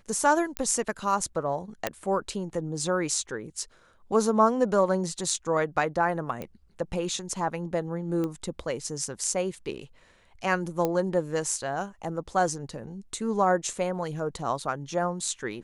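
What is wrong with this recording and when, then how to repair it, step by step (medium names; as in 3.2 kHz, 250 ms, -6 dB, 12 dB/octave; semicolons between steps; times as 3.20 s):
0.57 s: pop -13 dBFS
1.87 s: pop -10 dBFS
6.42 s: pop -21 dBFS
8.24 s: pop -19 dBFS
10.85 s: pop -13 dBFS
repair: de-click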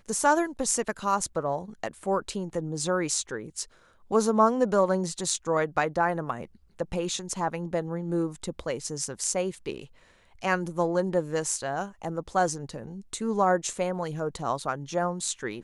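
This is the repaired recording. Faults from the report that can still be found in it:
nothing left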